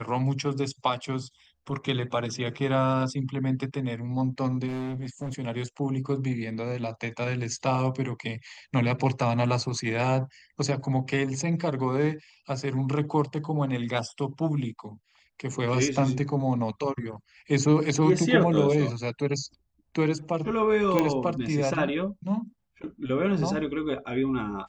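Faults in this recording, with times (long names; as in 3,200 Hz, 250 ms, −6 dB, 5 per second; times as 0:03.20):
0:04.67–0:05.35: clipping −29.5 dBFS
0:20.99: click −10 dBFS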